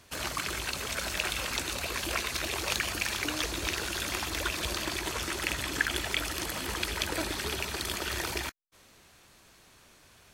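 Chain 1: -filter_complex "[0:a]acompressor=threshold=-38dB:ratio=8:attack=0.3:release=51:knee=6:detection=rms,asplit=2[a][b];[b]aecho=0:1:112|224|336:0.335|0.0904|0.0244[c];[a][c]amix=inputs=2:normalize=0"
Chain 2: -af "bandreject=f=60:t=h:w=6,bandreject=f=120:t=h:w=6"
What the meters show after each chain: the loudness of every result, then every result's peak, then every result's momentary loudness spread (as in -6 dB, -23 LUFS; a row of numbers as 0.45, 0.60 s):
-43.0, -31.5 LUFS; -30.5, -9.0 dBFS; 14, 3 LU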